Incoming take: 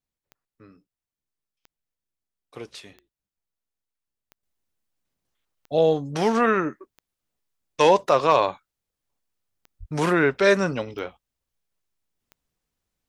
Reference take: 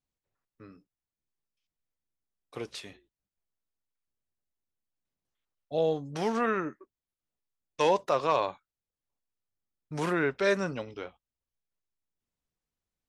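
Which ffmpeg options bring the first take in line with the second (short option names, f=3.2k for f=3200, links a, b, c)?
-filter_complex "[0:a]adeclick=t=4,asplit=3[a][b][c];[a]afade=t=out:st=9.79:d=0.02[d];[b]highpass=f=140:w=0.5412,highpass=f=140:w=1.3066,afade=t=in:st=9.79:d=0.02,afade=t=out:st=9.91:d=0.02[e];[c]afade=t=in:st=9.91:d=0.02[f];[d][e][f]amix=inputs=3:normalize=0,asetnsamples=n=441:p=0,asendcmd='4.43 volume volume -8dB',volume=0dB"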